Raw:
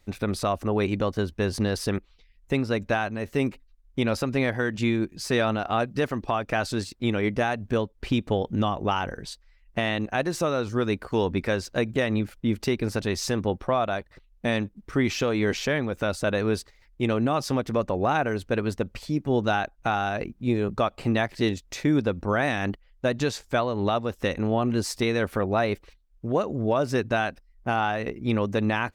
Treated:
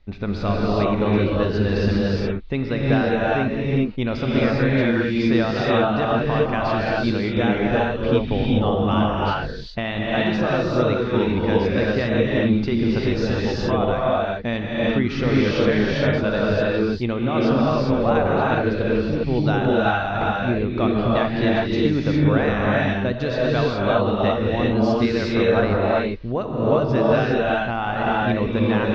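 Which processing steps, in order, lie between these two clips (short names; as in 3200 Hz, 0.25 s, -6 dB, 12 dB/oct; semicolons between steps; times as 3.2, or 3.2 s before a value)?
inverse Chebyshev low-pass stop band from 8500 Hz, stop band 40 dB; low shelf 93 Hz +11 dB; non-linear reverb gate 0.43 s rising, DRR -5 dB; gain -1.5 dB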